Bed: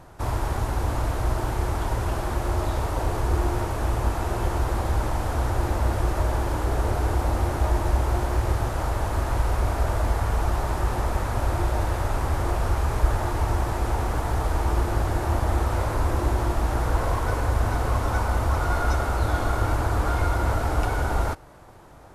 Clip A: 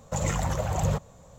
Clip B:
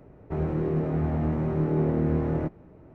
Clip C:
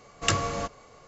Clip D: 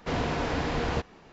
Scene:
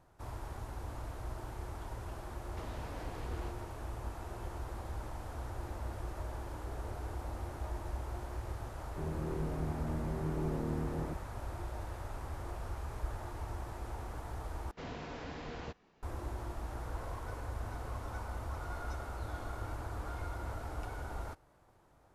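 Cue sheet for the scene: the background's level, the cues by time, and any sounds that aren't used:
bed -17.5 dB
2.51 add D -7 dB + compressor, threshold -39 dBFS
8.66 add B -12 dB
14.71 replace with D -15 dB
not used: A, C

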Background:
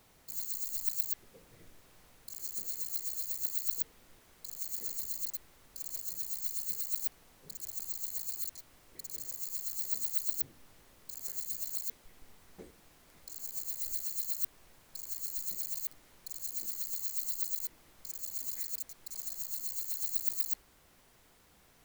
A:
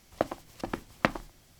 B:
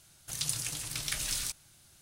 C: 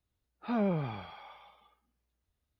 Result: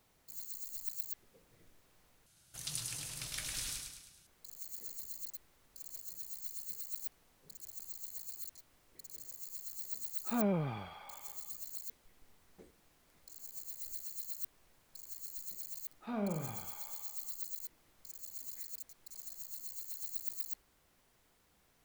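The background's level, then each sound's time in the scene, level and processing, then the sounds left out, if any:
background -7.5 dB
2.26 replace with B -8 dB + feedback echo 0.105 s, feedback 51%, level -4.5 dB
9.83 add C -2.5 dB
15.59 add C -8 dB + flutter echo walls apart 7.6 m, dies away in 0.39 s
not used: A

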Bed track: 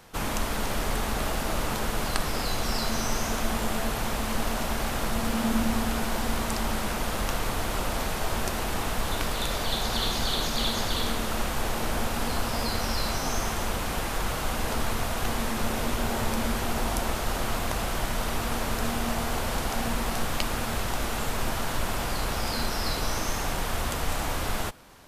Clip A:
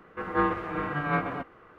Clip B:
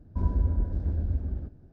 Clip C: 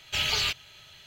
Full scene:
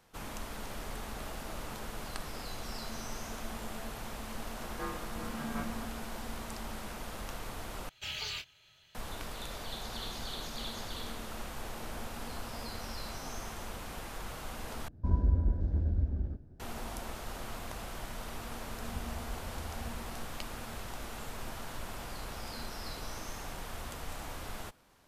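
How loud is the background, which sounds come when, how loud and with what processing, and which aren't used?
bed track -13 dB
4.44 add A -15.5 dB
7.89 replace with C -12.5 dB + doubler 26 ms -9 dB
14.88 replace with B -2 dB
18.71 add B -17 dB

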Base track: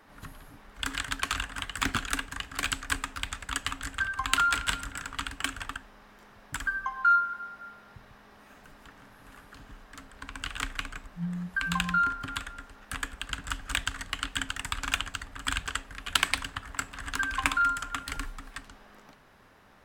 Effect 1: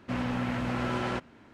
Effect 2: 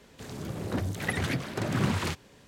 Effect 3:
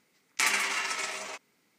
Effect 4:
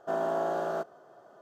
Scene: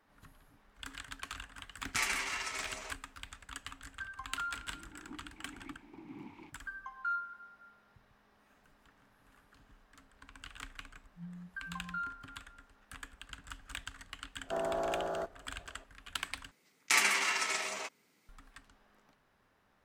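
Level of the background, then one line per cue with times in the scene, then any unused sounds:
base track -13.5 dB
1.56 add 3 -7 dB
4.36 add 2 -9 dB + vowel filter u
14.43 add 4 -5 dB
16.51 replace with 3 -1 dB
not used: 1

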